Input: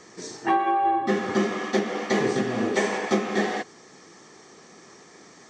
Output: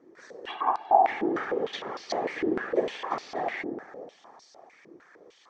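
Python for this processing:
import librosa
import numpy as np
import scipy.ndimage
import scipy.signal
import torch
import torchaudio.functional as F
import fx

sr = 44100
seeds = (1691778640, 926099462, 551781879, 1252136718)

y = fx.echo_wet_lowpass(x, sr, ms=111, feedback_pct=75, hz=900.0, wet_db=-5.0)
y = fx.whisperise(y, sr, seeds[0])
y = fx.filter_held_bandpass(y, sr, hz=6.6, low_hz=340.0, high_hz=4700.0)
y = y * 10.0 ** (3.5 / 20.0)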